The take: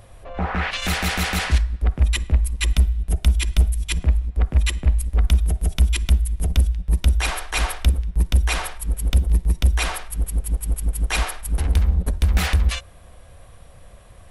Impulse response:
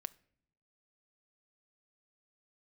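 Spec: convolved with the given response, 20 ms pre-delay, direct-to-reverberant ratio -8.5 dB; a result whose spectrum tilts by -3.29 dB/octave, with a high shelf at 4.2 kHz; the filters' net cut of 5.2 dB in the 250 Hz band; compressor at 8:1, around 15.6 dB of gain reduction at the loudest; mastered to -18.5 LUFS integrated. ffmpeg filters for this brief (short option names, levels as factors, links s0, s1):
-filter_complex "[0:a]equalizer=f=250:t=o:g=-8.5,highshelf=f=4200:g=7.5,acompressor=threshold=0.0398:ratio=8,asplit=2[s0][s1];[1:a]atrim=start_sample=2205,adelay=20[s2];[s1][s2]afir=irnorm=-1:irlink=0,volume=3.98[s3];[s0][s3]amix=inputs=2:normalize=0,volume=1.78"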